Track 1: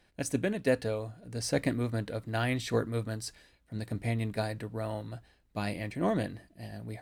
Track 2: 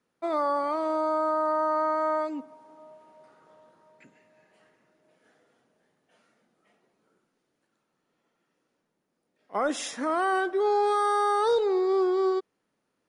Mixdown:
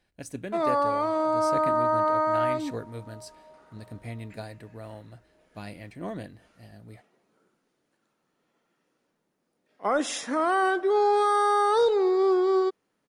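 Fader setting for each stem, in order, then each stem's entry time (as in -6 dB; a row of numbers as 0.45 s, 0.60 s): -6.5 dB, +2.0 dB; 0.00 s, 0.30 s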